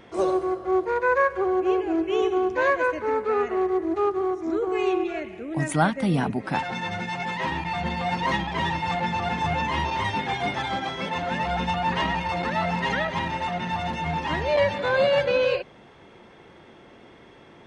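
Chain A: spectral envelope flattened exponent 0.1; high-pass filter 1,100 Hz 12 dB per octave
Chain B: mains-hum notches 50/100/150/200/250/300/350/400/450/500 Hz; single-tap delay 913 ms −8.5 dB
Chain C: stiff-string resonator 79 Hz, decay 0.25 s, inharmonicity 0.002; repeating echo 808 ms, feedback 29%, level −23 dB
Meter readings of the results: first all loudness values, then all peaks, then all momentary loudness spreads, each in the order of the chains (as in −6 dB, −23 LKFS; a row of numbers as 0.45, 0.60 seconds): −23.5, −25.0, −33.5 LKFS; −7.5, −7.0, −15.0 dBFS; 6, 6, 8 LU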